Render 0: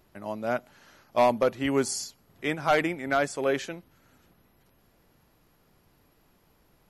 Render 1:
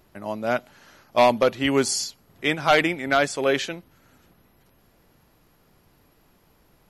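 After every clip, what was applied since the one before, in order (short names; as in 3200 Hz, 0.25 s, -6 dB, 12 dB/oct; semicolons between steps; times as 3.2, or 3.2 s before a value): dynamic EQ 3500 Hz, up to +7 dB, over -46 dBFS, Q 0.97; gain +4 dB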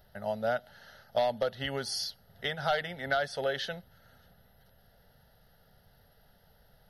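compressor 6:1, threshold -24 dBFS, peak gain reduction 11 dB; fixed phaser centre 1600 Hz, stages 8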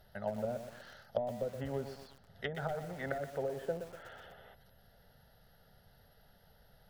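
spectral gain 3.58–4.55, 300–3600 Hz +12 dB; treble ducked by the level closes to 400 Hz, closed at -28.5 dBFS; lo-fi delay 0.122 s, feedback 55%, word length 8-bit, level -8.5 dB; gain -1 dB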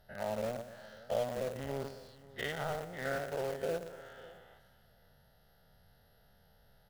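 spectral dilation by 0.12 s; echo 0.546 s -16.5 dB; in parallel at -8 dB: bit-crush 5-bit; on the sum: gain -7 dB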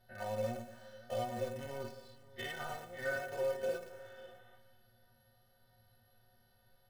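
metallic resonator 110 Hz, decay 0.29 s, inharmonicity 0.03; gain +7 dB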